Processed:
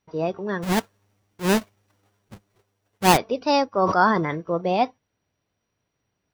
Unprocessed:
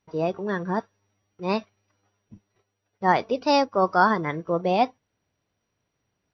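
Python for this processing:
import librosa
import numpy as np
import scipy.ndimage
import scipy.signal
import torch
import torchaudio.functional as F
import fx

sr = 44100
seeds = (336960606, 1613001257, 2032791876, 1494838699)

y = fx.halfwave_hold(x, sr, at=(0.62, 3.16), fade=0.02)
y = fx.sustainer(y, sr, db_per_s=43.0, at=(3.71, 4.38))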